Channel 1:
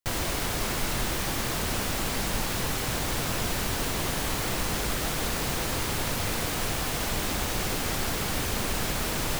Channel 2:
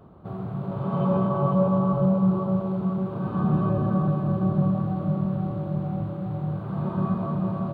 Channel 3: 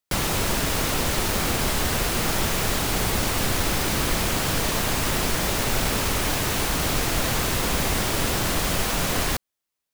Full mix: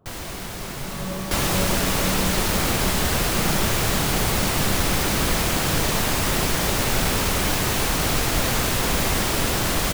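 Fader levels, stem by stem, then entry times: -4.0 dB, -9.0 dB, +1.5 dB; 0.00 s, 0.00 s, 1.20 s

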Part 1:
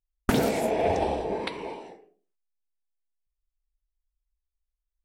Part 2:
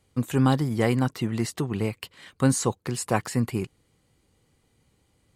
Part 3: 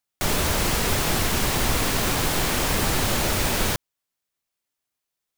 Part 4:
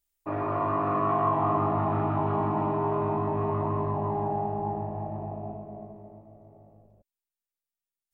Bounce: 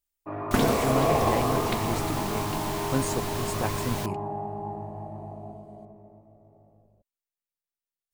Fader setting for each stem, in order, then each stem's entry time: 0.0 dB, -7.0 dB, -12.0 dB, -4.0 dB; 0.25 s, 0.50 s, 0.30 s, 0.00 s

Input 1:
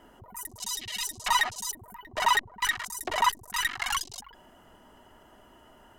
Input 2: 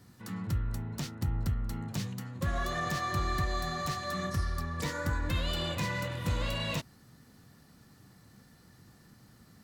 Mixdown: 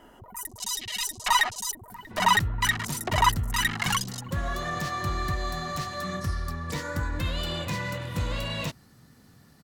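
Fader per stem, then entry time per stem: +2.5 dB, +2.0 dB; 0.00 s, 1.90 s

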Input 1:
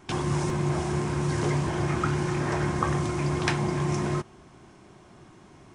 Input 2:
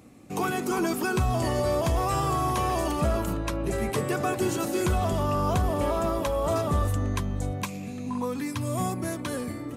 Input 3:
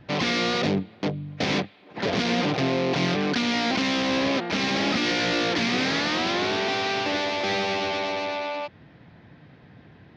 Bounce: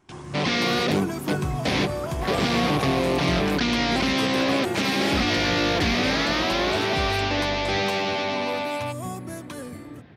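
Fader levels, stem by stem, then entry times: -10.5 dB, -4.5 dB, +1.0 dB; 0.00 s, 0.25 s, 0.25 s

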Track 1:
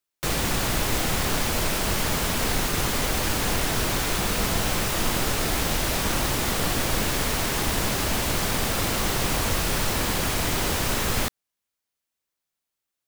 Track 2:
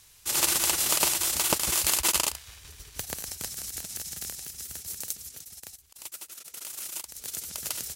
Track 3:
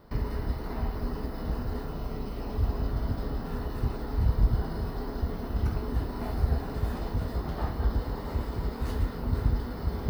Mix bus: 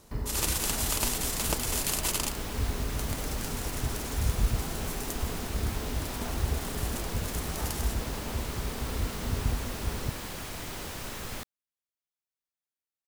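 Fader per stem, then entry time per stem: -13.5 dB, -6.0 dB, -3.5 dB; 0.15 s, 0.00 s, 0.00 s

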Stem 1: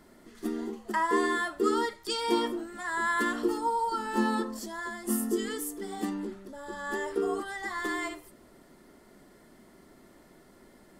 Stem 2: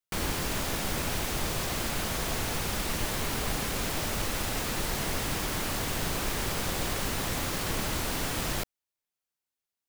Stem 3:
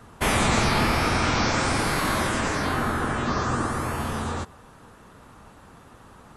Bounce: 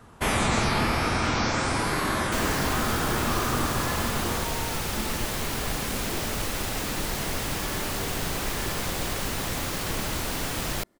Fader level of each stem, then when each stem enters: -10.0 dB, +1.5 dB, -2.5 dB; 0.80 s, 2.20 s, 0.00 s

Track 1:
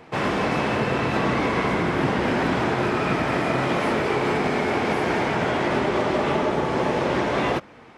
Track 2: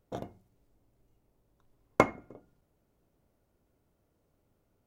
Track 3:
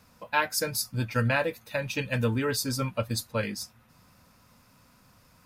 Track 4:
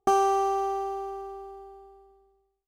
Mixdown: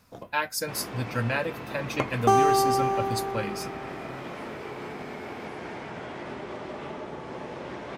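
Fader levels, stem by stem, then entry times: -15.0 dB, -5.5 dB, -2.0 dB, +2.5 dB; 0.55 s, 0.00 s, 0.00 s, 2.20 s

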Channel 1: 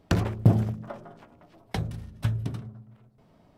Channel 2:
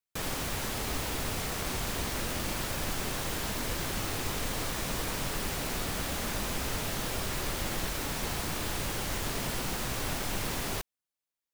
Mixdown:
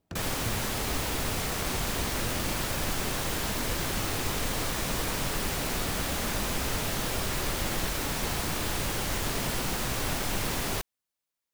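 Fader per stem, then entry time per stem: -17.0 dB, +3.0 dB; 0.00 s, 0.00 s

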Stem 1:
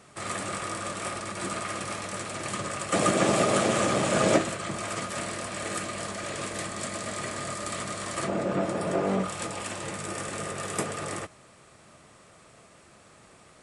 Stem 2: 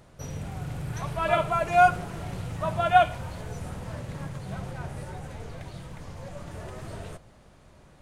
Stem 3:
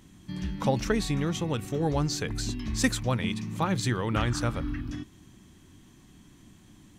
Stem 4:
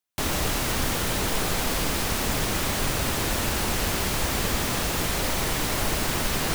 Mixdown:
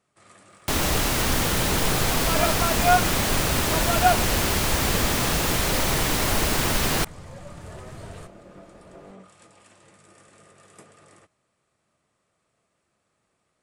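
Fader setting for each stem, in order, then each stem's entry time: -19.5 dB, -1.0 dB, mute, +3.0 dB; 0.00 s, 1.10 s, mute, 0.50 s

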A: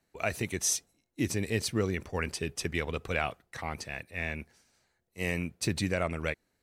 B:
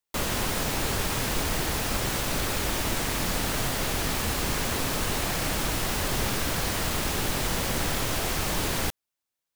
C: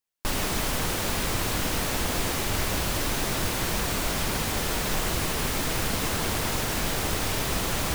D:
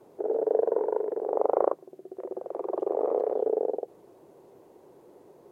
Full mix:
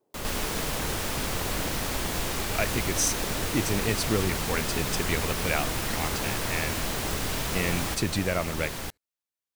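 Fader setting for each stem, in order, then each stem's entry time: +2.5 dB, -7.5 dB, -4.0 dB, -19.0 dB; 2.35 s, 0.00 s, 0.00 s, 0.00 s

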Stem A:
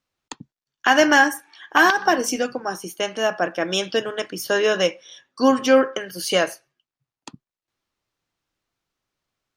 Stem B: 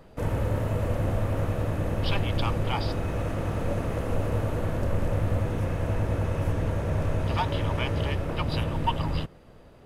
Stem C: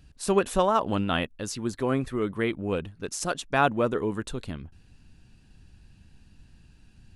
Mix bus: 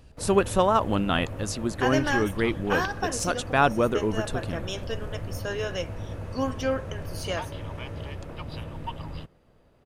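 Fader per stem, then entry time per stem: -12.0 dB, -9.0 dB, +1.5 dB; 0.95 s, 0.00 s, 0.00 s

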